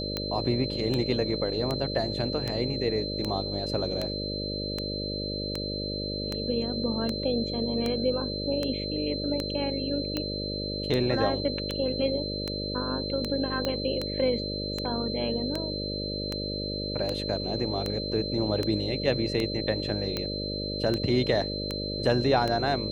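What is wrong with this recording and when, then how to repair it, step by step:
buzz 50 Hz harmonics 12 -34 dBFS
tick 78 rpm -15 dBFS
whine 4.1 kHz -34 dBFS
13.65 s: pop -15 dBFS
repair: de-click; band-stop 4.1 kHz, Q 30; de-hum 50 Hz, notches 12

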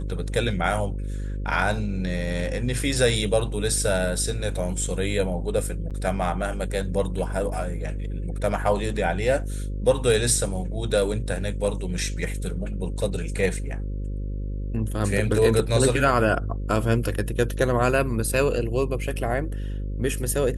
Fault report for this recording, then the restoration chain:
buzz 50 Hz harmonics 11 -29 dBFS
5.90–5.91 s: dropout 7 ms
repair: de-hum 50 Hz, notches 11; interpolate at 5.90 s, 7 ms

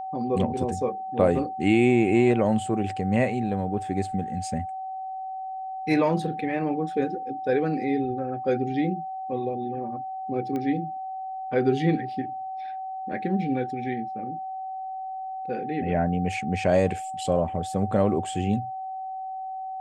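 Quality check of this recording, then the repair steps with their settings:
whine 760 Hz -31 dBFS
10.56 s: pop -20 dBFS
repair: de-click; band-stop 760 Hz, Q 30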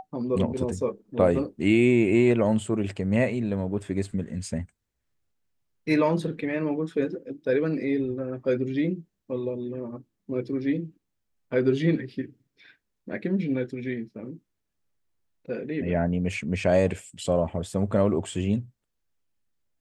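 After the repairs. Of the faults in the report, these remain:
nothing left

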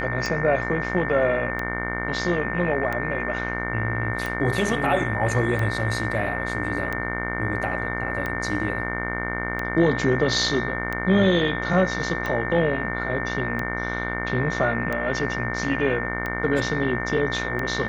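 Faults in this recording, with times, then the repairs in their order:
buzz 60 Hz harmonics 38 -30 dBFS
tick 45 rpm -15 dBFS
whine 1.8 kHz -30 dBFS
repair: de-click; de-hum 60 Hz, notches 38; band-stop 1.8 kHz, Q 30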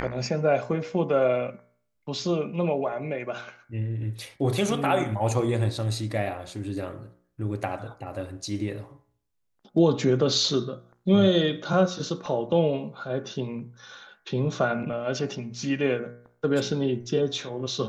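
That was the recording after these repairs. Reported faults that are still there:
nothing left

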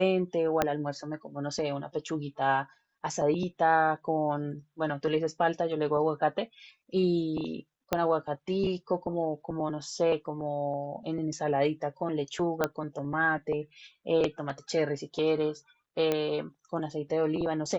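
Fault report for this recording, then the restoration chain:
0.62 s: pop -10 dBFS
7.93 s: pop -11 dBFS
12.64 s: pop -12 dBFS
16.12 s: pop -14 dBFS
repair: de-click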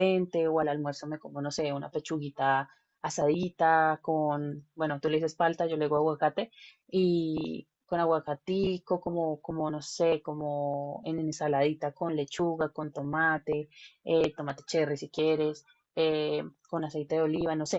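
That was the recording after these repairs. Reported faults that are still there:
0.62 s: pop
7.93 s: pop
16.12 s: pop

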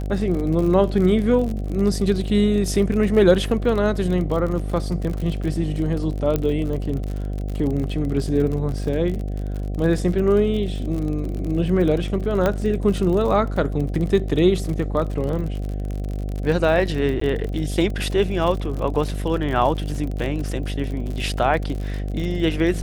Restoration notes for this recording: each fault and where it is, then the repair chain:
buzz 50 Hz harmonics 15 -26 dBFS
crackle 44 per s -27 dBFS
6.36 s: pop -9 dBFS
12.46 s: pop -8 dBFS
17.20–17.21 s: dropout 14 ms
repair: de-click; de-hum 50 Hz, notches 15; interpolate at 17.20 s, 14 ms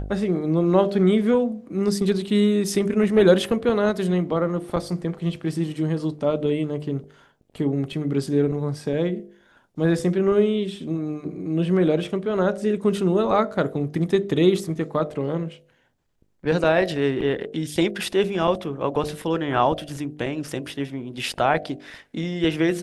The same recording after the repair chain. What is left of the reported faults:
nothing left

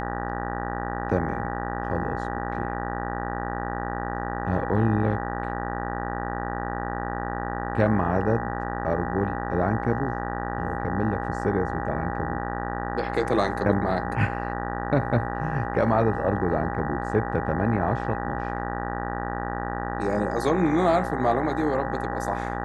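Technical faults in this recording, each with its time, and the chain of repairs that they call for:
buzz 60 Hz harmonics 32 -31 dBFS
whine 810 Hz -33 dBFS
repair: band-stop 810 Hz, Q 30; de-hum 60 Hz, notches 32

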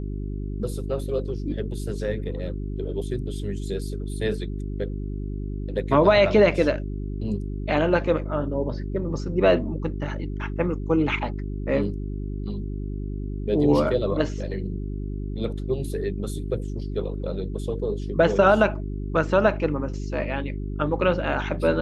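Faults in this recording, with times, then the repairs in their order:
hum 50 Hz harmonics 8 -30 dBFS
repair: de-hum 50 Hz, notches 8

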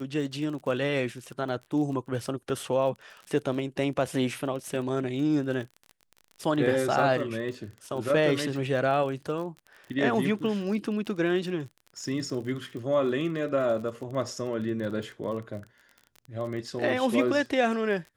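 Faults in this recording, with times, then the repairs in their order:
crackle 33 per s -36 dBFS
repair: de-click

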